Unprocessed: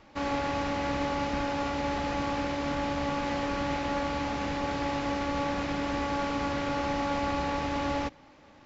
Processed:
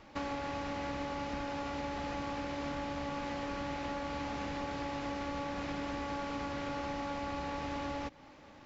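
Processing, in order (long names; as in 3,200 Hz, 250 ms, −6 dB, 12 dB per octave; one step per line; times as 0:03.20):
downward compressor 6 to 1, threshold −35 dBFS, peak gain reduction 9 dB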